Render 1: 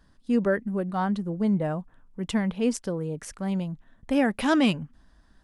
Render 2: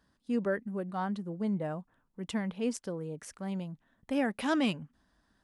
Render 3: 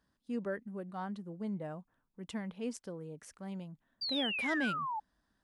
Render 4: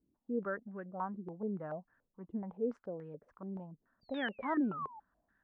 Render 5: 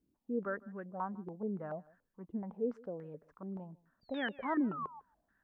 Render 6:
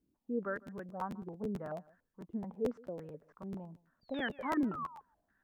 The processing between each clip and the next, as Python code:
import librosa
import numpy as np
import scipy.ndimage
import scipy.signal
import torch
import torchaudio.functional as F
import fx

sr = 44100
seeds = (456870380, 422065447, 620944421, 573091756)

y1 = fx.highpass(x, sr, hz=130.0, slope=6)
y1 = y1 * 10.0 ** (-6.5 / 20.0)
y2 = fx.spec_paint(y1, sr, seeds[0], shape='fall', start_s=4.01, length_s=0.99, low_hz=830.0, high_hz=4800.0, level_db=-30.0)
y2 = y2 * 10.0 ** (-6.5 / 20.0)
y3 = fx.filter_held_lowpass(y2, sr, hz=7.0, low_hz=340.0, high_hz=1700.0)
y3 = y3 * 10.0 ** (-3.5 / 20.0)
y4 = y3 + 10.0 ** (-23.0 / 20.0) * np.pad(y3, (int(153 * sr / 1000.0), 0))[:len(y3)]
y5 = fx.buffer_crackle(y4, sr, first_s=0.55, period_s=0.11, block=512, kind='repeat')